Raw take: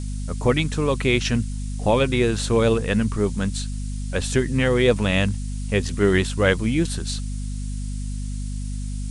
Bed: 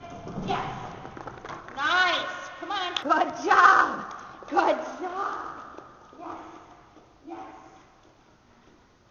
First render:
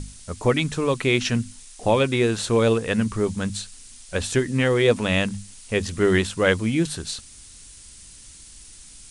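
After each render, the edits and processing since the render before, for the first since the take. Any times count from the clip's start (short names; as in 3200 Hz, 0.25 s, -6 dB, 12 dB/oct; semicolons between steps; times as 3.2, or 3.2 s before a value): notches 50/100/150/200/250 Hz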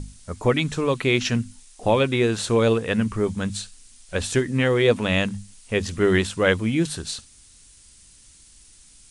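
noise print and reduce 6 dB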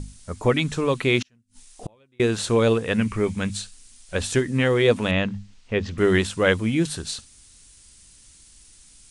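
1.22–2.2 flipped gate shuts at -21 dBFS, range -38 dB; 2.98–3.51 bell 2300 Hz +10 dB 0.45 oct; 5.11–5.98 air absorption 170 m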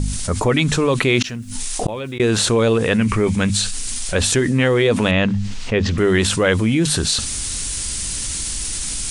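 fast leveller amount 70%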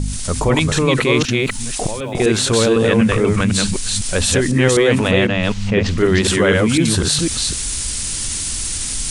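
reverse delay 0.251 s, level -2 dB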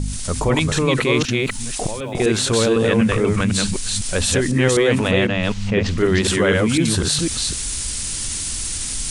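gain -2.5 dB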